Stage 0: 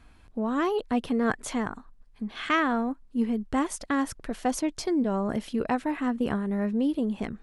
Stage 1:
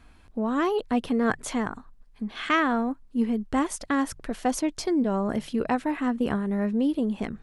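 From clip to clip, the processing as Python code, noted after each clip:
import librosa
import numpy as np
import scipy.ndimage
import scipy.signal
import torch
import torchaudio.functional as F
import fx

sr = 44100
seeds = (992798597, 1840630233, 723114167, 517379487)

y = fx.hum_notches(x, sr, base_hz=50, count=3)
y = y * librosa.db_to_amplitude(1.5)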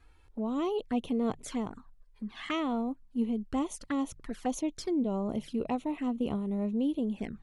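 y = fx.env_flanger(x, sr, rest_ms=2.5, full_db=-23.5)
y = y * librosa.db_to_amplitude(-5.0)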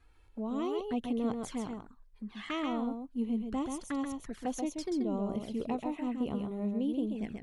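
y = x + 10.0 ** (-5.0 / 20.0) * np.pad(x, (int(133 * sr / 1000.0), 0))[:len(x)]
y = y * librosa.db_to_amplitude(-3.5)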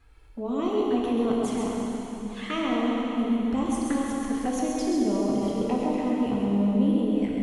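y = fx.rev_plate(x, sr, seeds[0], rt60_s=3.8, hf_ratio=0.95, predelay_ms=0, drr_db=-3.0)
y = y * librosa.db_to_amplitude(4.0)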